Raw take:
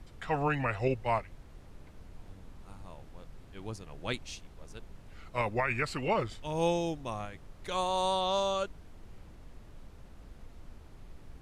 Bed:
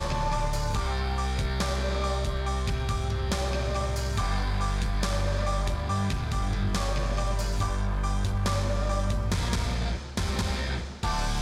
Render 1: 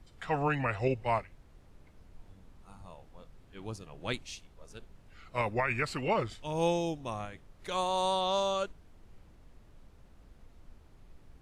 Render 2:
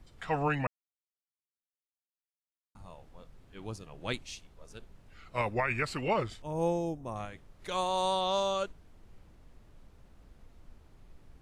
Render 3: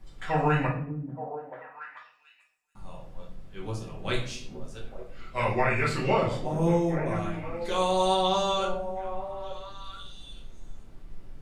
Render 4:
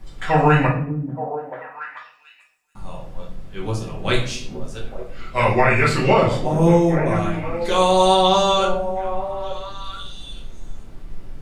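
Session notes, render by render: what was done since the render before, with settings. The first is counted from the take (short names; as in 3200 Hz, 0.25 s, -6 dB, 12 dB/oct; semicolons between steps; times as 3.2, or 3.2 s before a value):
noise print and reduce 6 dB
0.67–2.75 mute; 6.42–7.16 bell 3400 Hz -15 dB 1.8 oct
delay with a stepping band-pass 0.437 s, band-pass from 220 Hz, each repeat 1.4 oct, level -5 dB; shoebox room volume 79 m³, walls mixed, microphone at 1.1 m
gain +9.5 dB; limiter -3 dBFS, peak gain reduction 2 dB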